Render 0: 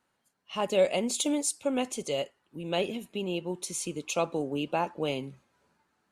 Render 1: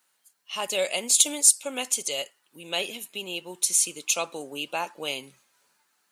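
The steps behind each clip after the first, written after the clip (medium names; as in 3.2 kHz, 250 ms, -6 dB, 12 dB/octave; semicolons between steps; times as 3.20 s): tilt EQ +4.5 dB/octave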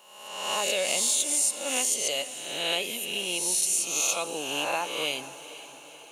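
reverse spectral sustain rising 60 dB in 1.06 s; compression, threshold -23 dBFS, peak gain reduction 13 dB; echo that smears into a reverb 486 ms, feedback 58%, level -15 dB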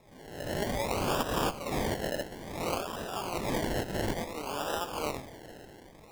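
decimation with a swept rate 29×, swing 60% 0.58 Hz; trim -4.5 dB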